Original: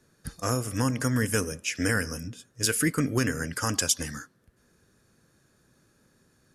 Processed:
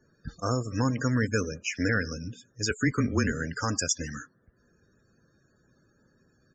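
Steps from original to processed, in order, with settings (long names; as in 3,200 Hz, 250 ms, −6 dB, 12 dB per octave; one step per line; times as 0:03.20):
0:02.70–0:03.33: frequency shifter −26 Hz
spectral peaks only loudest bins 64
downsampling to 16,000 Hz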